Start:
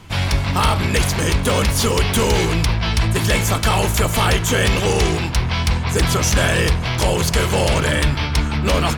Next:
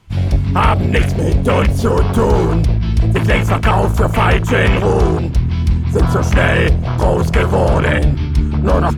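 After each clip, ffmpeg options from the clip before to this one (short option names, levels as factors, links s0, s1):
-af "afwtdn=0.0891,volume=1.78"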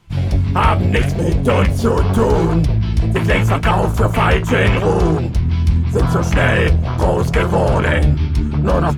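-af "flanger=delay=5.7:depth=7.5:regen=55:speed=0.8:shape=sinusoidal,volume=1.41"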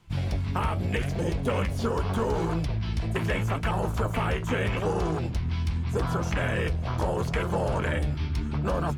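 -filter_complex "[0:a]acrossover=split=610|5500[s0][s1][s2];[s0]acompressor=threshold=0.1:ratio=4[s3];[s1]acompressor=threshold=0.0562:ratio=4[s4];[s2]acompressor=threshold=0.00562:ratio=4[s5];[s3][s4][s5]amix=inputs=3:normalize=0,volume=0.501"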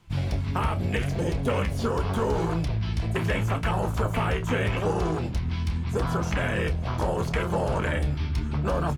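-filter_complex "[0:a]asplit=2[s0][s1];[s1]adelay=29,volume=0.237[s2];[s0][s2]amix=inputs=2:normalize=0,volume=1.12"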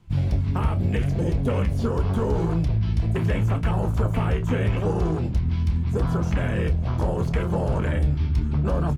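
-af "lowshelf=f=460:g=10.5,volume=0.562"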